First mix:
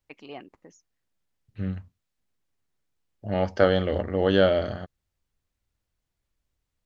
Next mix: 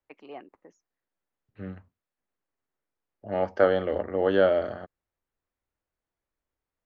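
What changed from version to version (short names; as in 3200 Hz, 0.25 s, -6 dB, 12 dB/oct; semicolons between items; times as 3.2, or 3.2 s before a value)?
master: add three-band isolator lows -12 dB, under 270 Hz, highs -13 dB, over 2100 Hz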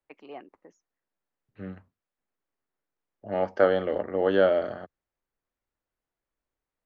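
master: add bell 78 Hz -11.5 dB 0.35 oct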